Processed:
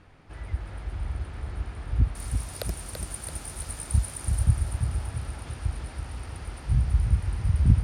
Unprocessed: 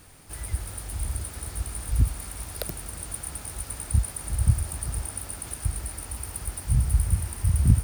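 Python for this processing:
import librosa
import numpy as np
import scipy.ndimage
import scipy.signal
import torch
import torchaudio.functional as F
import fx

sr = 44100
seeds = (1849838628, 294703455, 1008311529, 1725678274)

y = fx.lowpass(x, sr, hz=fx.steps((0.0, 2600.0), (2.15, 10000.0), (4.43, 4100.0)), slope=12)
y = fx.echo_feedback(y, sr, ms=335, feedback_pct=54, wet_db=-6.5)
y = y * librosa.db_to_amplitude(-1.0)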